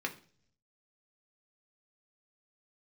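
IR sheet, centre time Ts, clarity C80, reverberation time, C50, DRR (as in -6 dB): 9 ms, 19.5 dB, 0.50 s, 15.0 dB, 1.5 dB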